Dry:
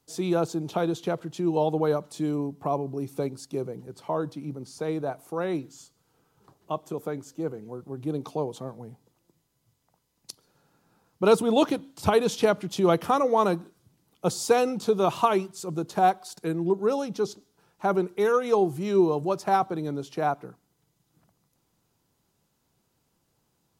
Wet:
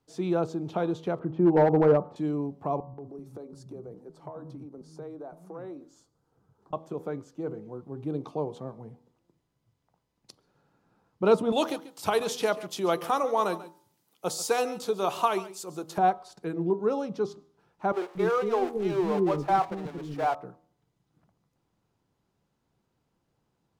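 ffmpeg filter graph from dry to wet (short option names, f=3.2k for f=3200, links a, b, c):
-filter_complex "[0:a]asettb=1/sr,asplit=3[a][b][c];[a]atrim=end=1.194[d];[b]atrim=start=1.19:end=2.16,asetpts=PTS-STARTPTS,afade=t=in:d=0.004:c=qsin,afade=t=out:st=0.966:d=0.004:c=qsin,lowpass=1.2k,acontrast=90,volume=12.5dB,asoftclip=hard,volume=-12.5dB[e];[c]atrim=start=2.156[f];[d][e]acrossfade=d=0.004:c1=hsin:c2=qsin[g];[g][f]acrossfade=d=0.004:c1=qsin:c2=hsin,asettb=1/sr,asplit=3[h][i][j];[h]atrim=end=2.804[k];[i]atrim=start=2.8:end=6.73,asetpts=PTS-STARTPTS,afade=t=in:d=0.004:c=qsin,afade=t=out:st=3.926:d=0.004:c=qsin,equalizer=f=2.6k:t=o:w=1.4:g=-10,acompressor=threshold=-34dB:ratio=6:attack=3.2:release=140:knee=1:detection=peak,acrossover=split=200[l][m];[m]adelay=180[n];[l][n]amix=inputs=2:normalize=0,atrim=end_sample=173313[o];[j]atrim=start=6.726[p];[k][o]acrossfade=d=0.004:c1=hsin:c2=qsin[q];[q][p]acrossfade=d=0.004:c1=qsin:c2=hsin,asettb=1/sr,asplit=3[r][s][t];[r]atrim=end=11.524[u];[s]atrim=start=11.52:end=15.98,asetpts=PTS-STARTPTS,afade=t=in:d=0.004:c=qsin,afade=t=out:st=4.456:d=0.004:c=qsin,aemphasis=mode=production:type=riaa,aecho=1:1:139:0.15,atrim=end_sample=196686[v];[t]atrim=start=15.976[w];[u][v]acrossfade=d=0.004:c1=hsin:c2=qsin[x];[x][w]acrossfade=d=0.004:c1=qsin:c2=hsin,asettb=1/sr,asplit=3[y][z][aa];[y]atrim=end=17.924[ab];[z]atrim=start=17.92:end=20.35,asetpts=PTS-STARTPTS,afade=t=in:d=0.004:c=qsin,afade=t=out:st=2.426:d=0.004:c=qsin,aeval=exprs='val(0)+0.5*0.0447*sgn(val(0))':c=same,agate=range=-14dB:threshold=-26dB:ratio=16:release=100:detection=peak,acrossover=split=380[ac][ad];[ac]adelay=230[ae];[ae][ad]amix=inputs=2:normalize=0,atrim=end_sample=107163[af];[aa]atrim=start=20.346[ag];[ab][af]acrossfade=d=0.004:c1=hsin:c2=qsin[ah];[ah][ag]acrossfade=d=0.004:c1=qsin:c2=hsin,aemphasis=mode=reproduction:type=75kf,bandreject=f=80.41:t=h:w=4,bandreject=f=160.82:t=h:w=4,bandreject=f=241.23:t=h:w=4,bandreject=f=321.64:t=h:w=4,bandreject=f=402.05:t=h:w=4,bandreject=f=482.46:t=h:w=4,bandreject=f=562.87:t=h:w=4,bandreject=f=643.28:t=h:w=4,bandreject=f=723.69:t=h:w=4,bandreject=f=804.1:t=h:w=4,bandreject=f=884.51:t=h:w=4,bandreject=f=964.92:t=h:w=4,bandreject=f=1.04533k:t=h:w=4,bandreject=f=1.12574k:t=h:w=4,bandreject=f=1.20615k:t=h:w=4,bandreject=f=1.28656k:t=h:w=4,volume=-1.5dB"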